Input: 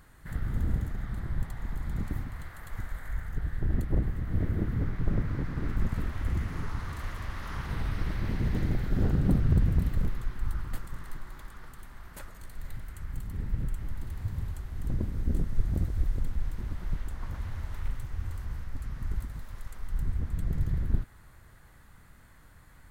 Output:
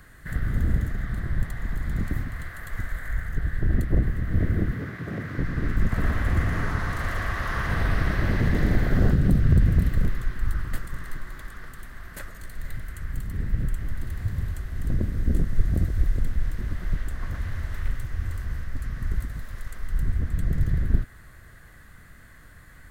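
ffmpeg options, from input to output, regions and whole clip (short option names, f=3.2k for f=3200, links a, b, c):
-filter_complex "[0:a]asettb=1/sr,asplit=3[a][b][c];[a]atrim=end=4.724[d];[b]atrim=start=4.72:end=5.38,asetpts=PTS-STARTPTS,afade=t=in:d=0.004:c=qsin,afade=t=out:st=0.656:d=0.004:c=qsin,highpass=f=77:w=0.5412,highpass=f=77:w=1.3066,lowshelf=f=160:g=-11,asoftclip=type=hard:threshold=-31.5dB[e];[c]atrim=start=5.376[f];[d][e]acrossfade=d=0.004:c1=hsin:c2=qsin[g];[g][f]acrossfade=d=0.004:c1=qsin:c2=hsin,asettb=1/sr,asplit=3[h][i][j];[h]atrim=end=5.914[k];[i]atrim=start=5.91:end=9.14,asetpts=PTS-STARTPTS,afade=t=in:d=0.004:c=qsin,afade=t=out:st=3.226:d=0.004:c=qsin,equalizer=f=780:w=0.88:g=7.5,aecho=1:1:118:0.668,atrim=end_sample=142443[l];[j]atrim=start=9.136[m];[k][l]acrossfade=d=0.004:c1=hsin:c2=qsin[n];[n][m]acrossfade=d=0.004:c1=qsin:c2=hsin,superequalizer=9b=0.501:11b=1.78,acrossover=split=180|3000[o][p][q];[p]acompressor=threshold=-30dB:ratio=6[r];[o][r][q]amix=inputs=3:normalize=0,volume=5.5dB"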